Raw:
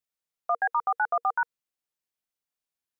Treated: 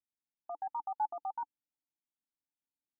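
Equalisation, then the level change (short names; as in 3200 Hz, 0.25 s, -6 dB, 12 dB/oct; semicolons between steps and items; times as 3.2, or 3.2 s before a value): vocal tract filter u; fixed phaser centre 1100 Hz, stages 4; +9.0 dB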